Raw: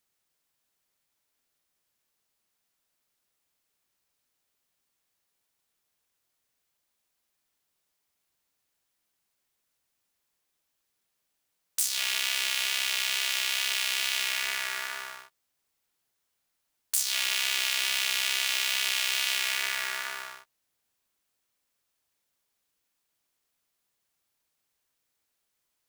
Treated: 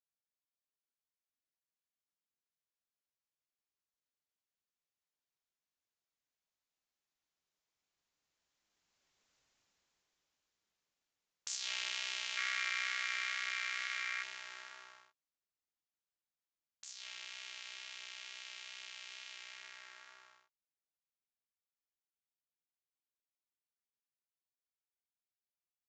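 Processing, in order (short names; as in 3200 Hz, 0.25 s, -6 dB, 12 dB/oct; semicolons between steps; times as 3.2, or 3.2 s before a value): Doppler pass-by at 9.36, 14 m/s, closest 6.3 m; downsampling 16000 Hz; spectral gain 12.37–14.23, 1100–2400 Hz +10 dB; gain +4.5 dB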